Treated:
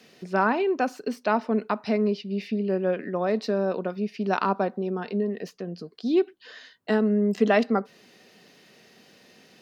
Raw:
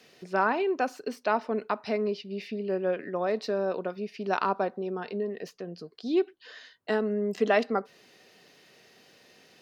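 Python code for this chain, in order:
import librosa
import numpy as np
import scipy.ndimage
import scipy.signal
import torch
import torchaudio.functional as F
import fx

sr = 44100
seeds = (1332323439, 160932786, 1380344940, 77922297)

y = fx.peak_eq(x, sr, hz=210.0, db=7.0, octaves=0.77)
y = y * librosa.db_to_amplitude(2.0)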